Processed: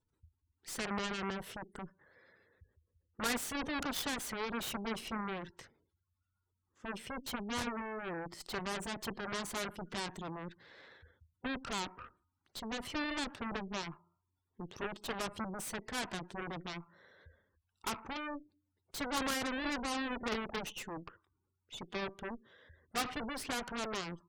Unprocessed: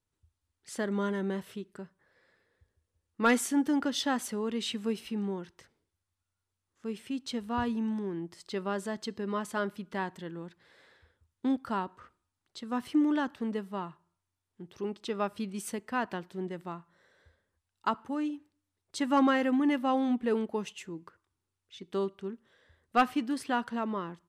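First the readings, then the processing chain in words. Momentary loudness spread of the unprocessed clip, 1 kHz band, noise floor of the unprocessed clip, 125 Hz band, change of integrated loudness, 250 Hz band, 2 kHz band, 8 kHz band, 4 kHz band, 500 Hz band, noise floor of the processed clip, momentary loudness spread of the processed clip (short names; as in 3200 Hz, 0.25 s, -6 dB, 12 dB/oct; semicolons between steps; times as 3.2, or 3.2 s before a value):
17 LU, -7.0 dB, under -85 dBFS, -5.0 dB, -7.5 dB, -11.0 dB, -2.0 dB, -0.5 dB, 0.0 dB, -8.5 dB, -85 dBFS, 13 LU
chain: soft clip -31 dBFS, distortion -8 dB; spectral gate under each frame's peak -20 dB strong; added harmonics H 3 -6 dB, 5 -8 dB, 6 -11 dB, 8 -9 dB, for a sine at -29.5 dBFS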